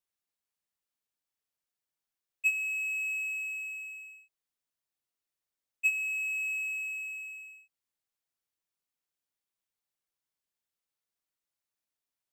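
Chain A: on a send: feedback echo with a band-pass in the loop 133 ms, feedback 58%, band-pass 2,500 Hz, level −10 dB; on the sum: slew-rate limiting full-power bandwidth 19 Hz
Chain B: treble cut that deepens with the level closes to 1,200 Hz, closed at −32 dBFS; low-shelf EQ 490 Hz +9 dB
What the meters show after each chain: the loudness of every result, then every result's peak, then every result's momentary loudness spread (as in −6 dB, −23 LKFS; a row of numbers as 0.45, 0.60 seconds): −41.5, −41.5 LKFS; −35.5, −26.0 dBFS; 8, 6 LU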